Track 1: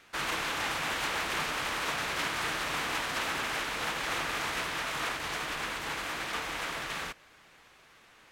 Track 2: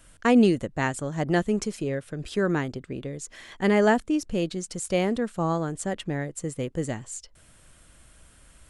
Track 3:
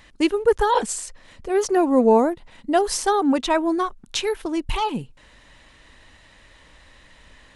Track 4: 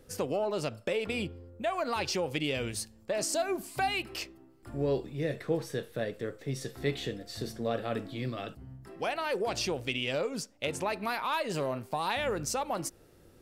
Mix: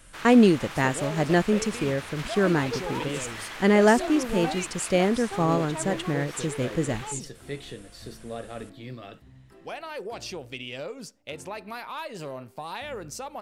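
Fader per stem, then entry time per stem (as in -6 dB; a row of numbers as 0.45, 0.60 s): -7.0, +2.0, -16.5, -4.5 dB; 0.00, 0.00, 2.25, 0.65 s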